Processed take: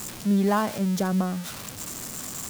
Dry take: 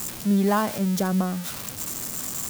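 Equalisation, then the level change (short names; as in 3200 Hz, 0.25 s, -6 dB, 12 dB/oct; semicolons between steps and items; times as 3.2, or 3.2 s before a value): high shelf 11000 Hz -7.5 dB; -1.0 dB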